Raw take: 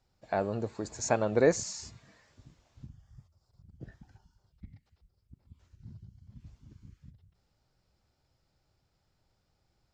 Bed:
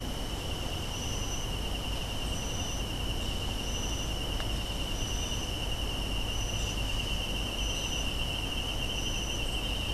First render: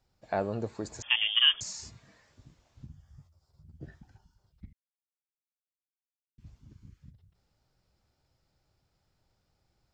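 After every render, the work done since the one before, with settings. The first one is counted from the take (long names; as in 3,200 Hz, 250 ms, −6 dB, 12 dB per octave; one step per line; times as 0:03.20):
0:01.02–0:01.61: voice inversion scrambler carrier 3,400 Hz
0:02.88–0:04.00: double-tracking delay 13 ms −4 dB
0:04.73–0:06.38: silence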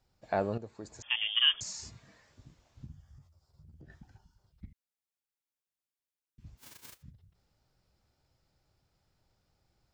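0:00.58–0:01.95: fade in, from −12 dB
0:03.06–0:03.90: downward compressor, threshold −50 dBFS
0:06.57–0:07.01: spectral envelope flattened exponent 0.1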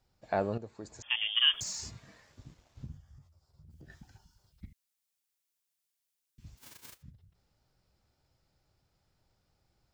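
0:01.53–0:02.98: leveller curve on the samples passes 1
0:03.70–0:06.59: high-shelf EQ 2,500 Hz +10 dB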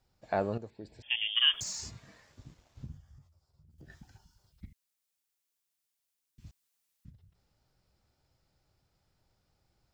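0:00.70–0:01.36: phaser with its sweep stopped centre 2,900 Hz, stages 4
0:03.06–0:03.78: fade out, to −7.5 dB
0:06.51–0:07.05: fill with room tone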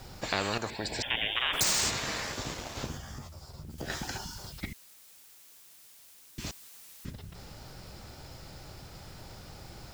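in parallel at +0.5 dB: brickwall limiter −24.5 dBFS, peak gain reduction 10.5 dB
on the sum: every bin compressed towards the loudest bin 4 to 1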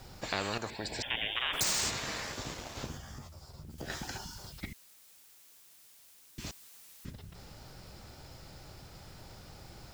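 level −3.5 dB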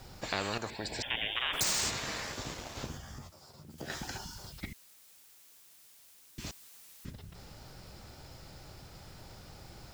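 0:03.29–0:03.94: high-pass filter 230 Hz → 87 Hz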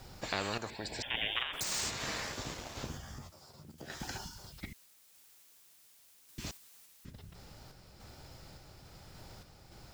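sample-and-hold tremolo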